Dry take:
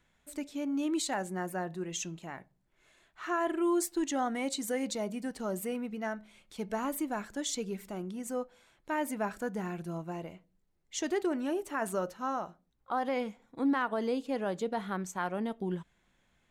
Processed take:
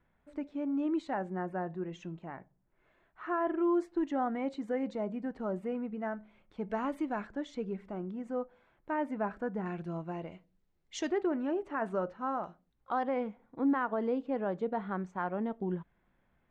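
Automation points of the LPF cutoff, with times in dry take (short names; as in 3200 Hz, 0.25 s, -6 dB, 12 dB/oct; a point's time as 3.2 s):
1500 Hz
from 6.7 s 2600 Hz
from 7.27 s 1600 Hz
from 9.66 s 2900 Hz
from 10.32 s 4700 Hz
from 11.1 s 1800 Hz
from 12.44 s 3600 Hz
from 13.03 s 1600 Hz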